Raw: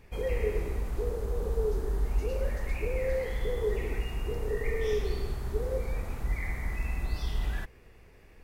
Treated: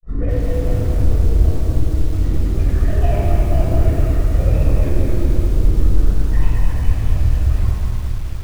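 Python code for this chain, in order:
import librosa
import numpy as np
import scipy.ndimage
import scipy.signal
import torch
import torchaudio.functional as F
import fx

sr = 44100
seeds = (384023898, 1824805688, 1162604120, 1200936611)

p1 = fx.lowpass(x, sr, hz=1600.0, slope=6)
p2 = fx.low_shelf(p1, sr, hz=380.0, db=7.0)
p3 = fx.over_compress(p2, sr, threshold_db=-24.0, ratio=-0.5)
p4 = fx.granulator(p3, sr, seeds[0], grain_ms=100.0, per_s=20.0, spray_ms=100.0, spread_st=12)
p5 = fx.formant_shift(p4, sr, semitones=-6)
p6 = fx.wow_flutter(p5, sr, seeds[1], rate_hz=2.1, depth_cents=140.0)
p7 = p6 + fx.room_early_taps(p6, sr, ms=(29, 46), db=(-14.5, -16.0), dry=0)
p8 = fx.room_shoebox(p7, sr, seeds[2], volume_m3=3600.0, walls='mixed', distance_m=6.1)
p9 = fx.echo_crushed(p8, sr, ms=214, feedback_pct=55, bits=6, wet_db=-4.5)
y = p9 * librosa.db_to_amplitude(-1.5)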